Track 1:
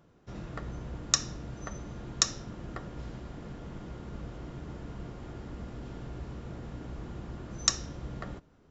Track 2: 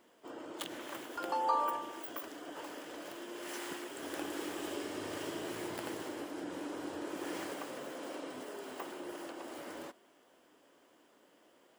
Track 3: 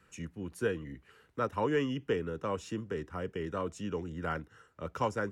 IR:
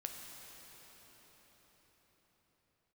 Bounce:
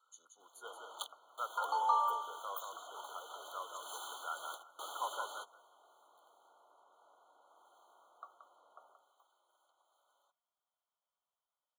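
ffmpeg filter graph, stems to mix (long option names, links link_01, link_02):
-filter_complex "[0:a]lowpass=frequency=1200:width=0.5412,lowpass=frequency=1200:width=1.3066,adelay=550,volume=-9.5dB,asplit=2[link_01][link_02];[link_02]volume=-8.5dB[link_03];[1:a]adelay=400,volume=1.5dB[link_04];[2:a]volume=-4.5dB,asplit=3[link_05][link_06][link_07];[link_06]volume=-5dB[link_08];[link_07]apad=whole_len=537433[link_09];[link_04][link_09]sidechaingate=range=-26dB:threshold=-58dB:ratio=16:detection=peak[link_10];[link_03][link_08]amix=inputs=2:normalize=0,aecho=0:1:177|354|531:1|0.16|0.0256[link_11];[link_01][link_10][link_05][link_11]amix=inputs=4:normalize=0,highpass=frequency=760:width=0.5412,highpass=frequency=760:width=1.3066,afftfilt=real='re*eq(mod(floor(b*sr/1024/1500),2),0)':imag='im*eq(mod(floor(b*sr/1024/1500),2),0)':win_size=1024:overlap=0.75"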